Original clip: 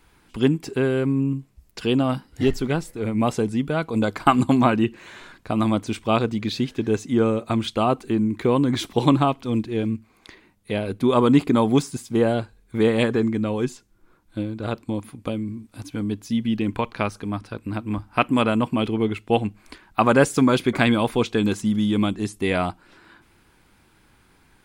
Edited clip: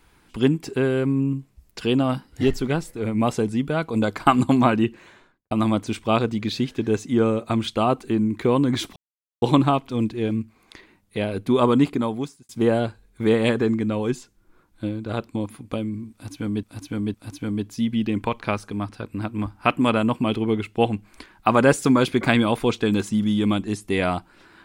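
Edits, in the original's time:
4.8–5.51 studio fade out
8.96 insert silence 0.46 s
11.17–12.03 fade out
15.66–16.17 loop, 3 plays

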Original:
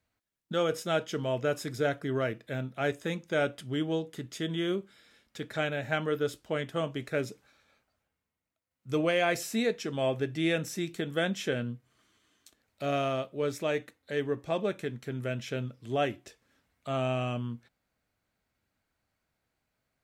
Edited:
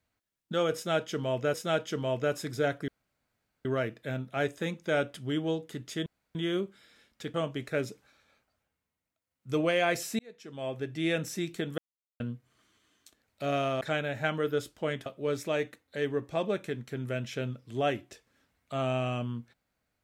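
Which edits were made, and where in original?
0.75–1.54 loop, 2 plays
2.09 insert room tone 0.77 s
4.5 insert room tone 0.29 s
5.49–6.74 move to 13.21
9.59–10.62 fade in
11.18–11.6 mute

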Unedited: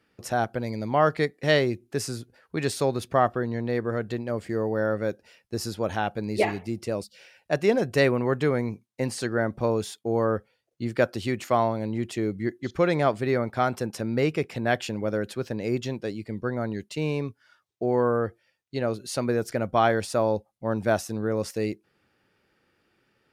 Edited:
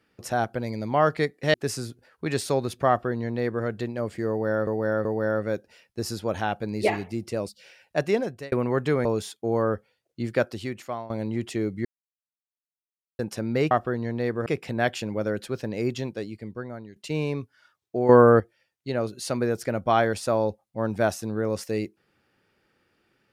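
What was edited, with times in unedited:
1.54–1.85 cut
3.2–3.95 copy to 14.33
4.6–4.98 loop, 3 plays
7.59–8.07 fade out
8.6–9.67 cut
10.91–11.72 fade out, to -17.5 dB
12.47–13.81 mute
15.91–16.83 fade out, to -15.5 dB
17.96–18.27 gain +9 dB

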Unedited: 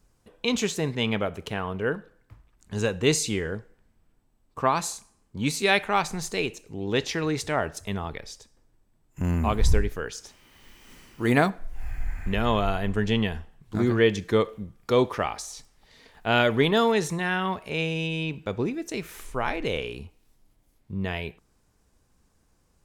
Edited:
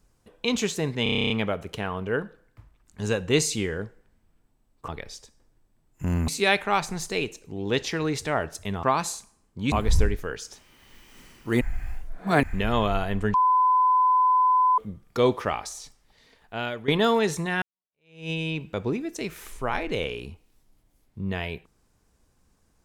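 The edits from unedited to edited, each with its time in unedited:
1.03 stutter 0.03 s, 10 plays
4.61–5.5 swap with 8.05–9.45
11.34–12.16 reverse
13.07–14.51 bleep 1010 Hz -16.5 dBFS
15.45–16.61 fade out, to -15.5 dB
17.35–18.03 fade in exponential

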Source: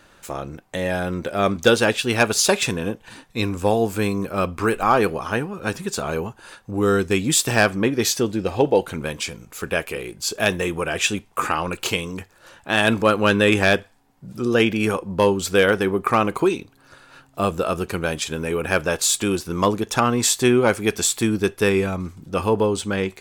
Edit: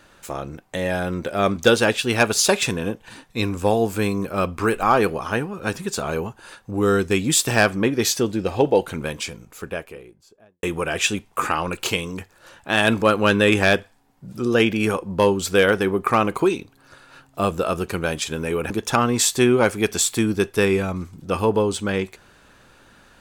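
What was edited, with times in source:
9–10.63 studio fade out
18.7–19.74 cut

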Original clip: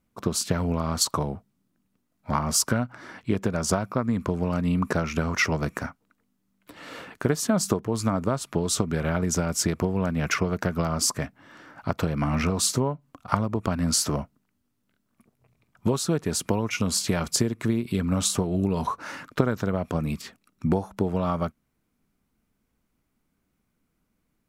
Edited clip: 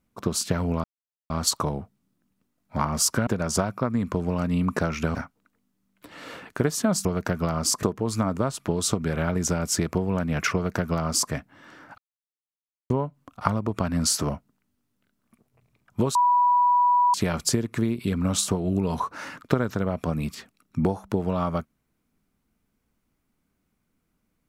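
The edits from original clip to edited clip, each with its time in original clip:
0.84 insert silence 0.46 s
2.81–3.41 cut
5.29–5.8 cut
10.41–11.19 copy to 7.7
11.85–12.77 mute
16.02–17.01 bleep 979 Hz -16 dBFS

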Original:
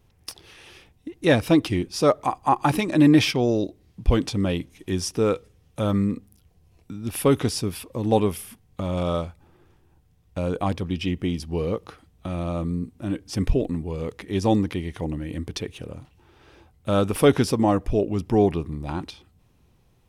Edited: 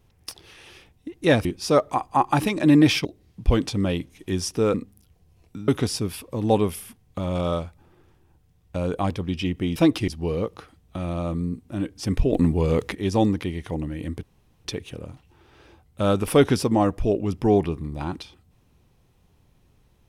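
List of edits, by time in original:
1.45–1.77 move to 11.38
3.37–3.65 cut
5.34–6.09 cut
7.03–7.3 cut
13.63–14.25 gain +8.5 dB
15.53 insert room tone 0.42 s

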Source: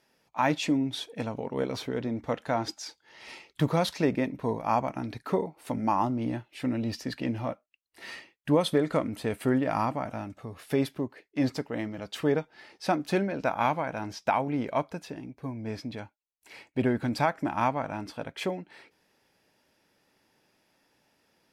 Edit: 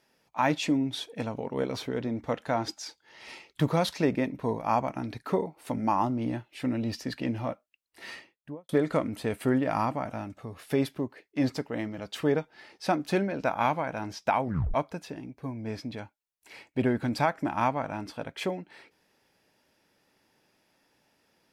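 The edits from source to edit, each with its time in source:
8.08–8.69 studio fade out
14.43 tape stop 0.31 s

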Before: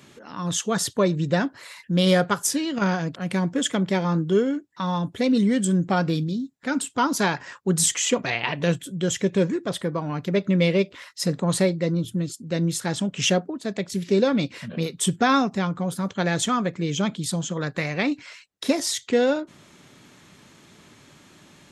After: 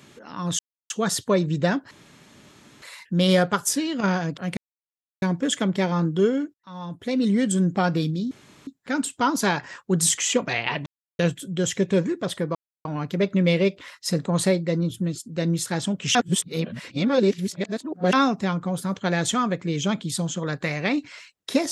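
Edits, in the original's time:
0.59 insert silence 0.31 s
1.6 insert room tone 0.91 s
3.35 insert silence 0.65 s
4.67–5.53 fade in
6.44 insert room tone 0.36 s
8.63 insert silence 0.33 s
9.99 insert silence 0.30 s
13.29–15.27 reverse

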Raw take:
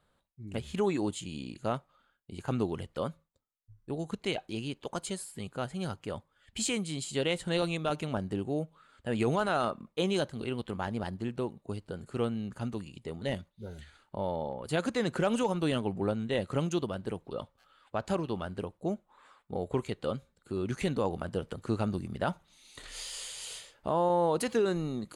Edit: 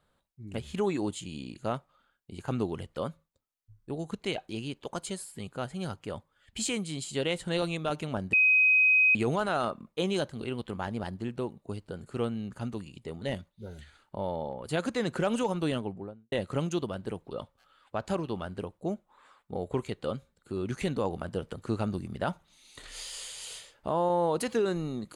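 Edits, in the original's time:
8.33–9.15 bleep 2520 Hz -18.5 dBFS
15.62–16.32 studio fade out

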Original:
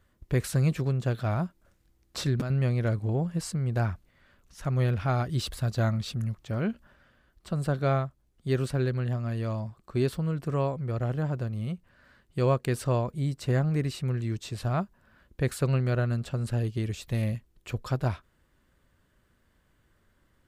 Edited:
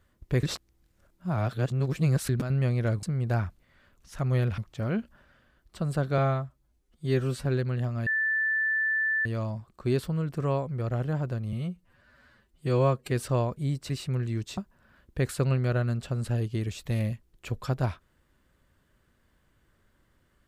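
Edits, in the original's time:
0.43–2.29 reverse
3.03–3.49 cut
5.04–6.29 cut
7.89–8.74 stretch 1.5×
9.35 add tone 1760 Hz -23.5 dBFS 1.19 s
11.62–12.68 stretch 1.5×
13.46–13.84 cut
14.52–14.8 cut

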